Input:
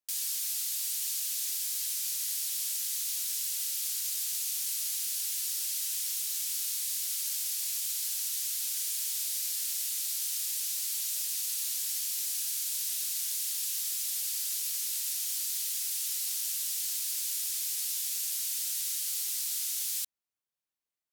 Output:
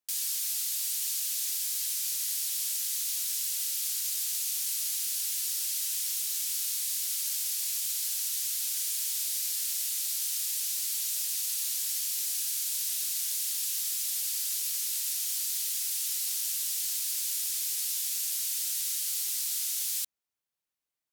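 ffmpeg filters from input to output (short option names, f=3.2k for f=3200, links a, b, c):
-filter_complex "[0:a]asettb=1/sr,asplit=3[a][b][c];[a]atrim=end=10.454[d];[b]atrim=start=10.45:end=12.52,asetpts=PTS-STARTPTS,afade=t=in:d=0.004:c=qsin,afade=t=out:st=2.066:d=0.004:c=qsin,highpass=520[e];[c]atrim=start=12.516[f];[d][e]acrossfade=d=0.004:c1=hsin:c2=qsin[g];[g][f]acrossfade=d=0.004:c1=qsin:c2=hsin,volume=1.5dB"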